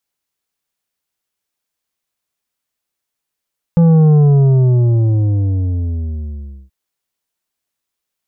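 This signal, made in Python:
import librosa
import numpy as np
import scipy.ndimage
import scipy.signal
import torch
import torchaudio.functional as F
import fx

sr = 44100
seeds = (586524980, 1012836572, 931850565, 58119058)

y = fx.sub_drop(sr, level_db=-7.0, start_hz=170.0, length_s=2.93, drive_db=8.0, fade_s=2.58, end_hz=65.0)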